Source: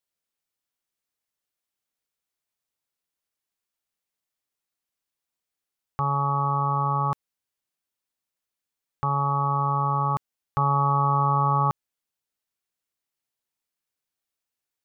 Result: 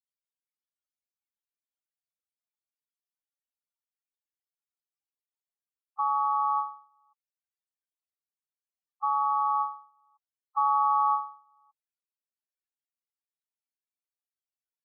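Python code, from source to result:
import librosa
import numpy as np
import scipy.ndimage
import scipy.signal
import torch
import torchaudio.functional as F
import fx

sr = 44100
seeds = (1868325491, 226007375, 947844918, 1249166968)

y = scipy.signal.sosfilt(scipy.signal.cheby2(4, 50, 170.0, 'highpass', fs=sr, output='sos'), x)
y = fx.spec_topn(y, sr, count=8)
y = fx.end_taper(y, sr, db_per_s=130.0)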